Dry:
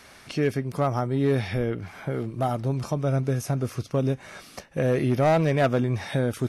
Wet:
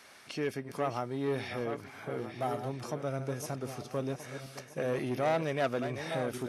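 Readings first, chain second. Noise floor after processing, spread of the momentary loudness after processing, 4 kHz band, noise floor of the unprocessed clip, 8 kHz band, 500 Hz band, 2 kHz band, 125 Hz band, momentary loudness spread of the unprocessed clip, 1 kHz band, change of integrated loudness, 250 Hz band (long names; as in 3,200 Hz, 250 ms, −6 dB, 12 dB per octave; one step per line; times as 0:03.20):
−53 dBFS, 10 LU, −5.0 dB, −50 dBFS, −5.0 dB, −7.5 dB, −6.0 dB, −14.5 dB, 11 LU, −6.5 dB, −9.5 dB, −10.5 dB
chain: feedback delay that plays each chunk backwards 638 ms, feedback 49%, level −9.5 dB
soft clipping −15.5 dBFS, distortion −20 dB
high-pass filter 350 Hz 6 dB per octave
level −5 dB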